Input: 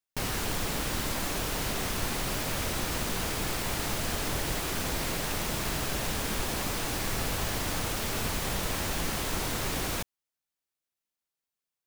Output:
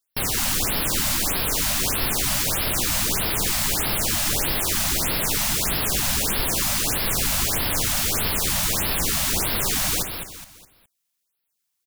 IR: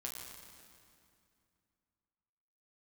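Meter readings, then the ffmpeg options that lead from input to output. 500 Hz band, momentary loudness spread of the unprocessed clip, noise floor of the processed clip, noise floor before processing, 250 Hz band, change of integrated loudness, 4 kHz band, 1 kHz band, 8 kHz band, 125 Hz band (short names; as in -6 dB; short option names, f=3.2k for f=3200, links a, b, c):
+3.5 dB, 0 LU, -77 dBFS, under -85 dBFS, +4.0 dB, +10.0 dB, +9.0 dB, +4.5 dB, +11.5 dB, +4.5 dB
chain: -af "highshelf=f=3.1k:g=9.5,aecho=1:1:208|416|624|832:0.447|0.165|0.0612|0.0226,afftfilt=real='re*(1-between(b*sr/1024,360*pow(7800/360,0.5+0.5*sin(2*PI*1.6*pts/sr))/1.41,360*pow(7800/360,0.5+0.5*sin(2*PI*1.6*pts/sr))*1.41))':imag='im*(1-between(b*sr/1024,360*pow(7800/360,0.5+0.5*sin(2*PI*1.6*pts/sr))/1.41,360*pow(7800/360,0.5+0.5*sin(2*PI*1.6*pts/sr))*1.41))':win_size=1024:overlap=0.75,volume=3.5dB"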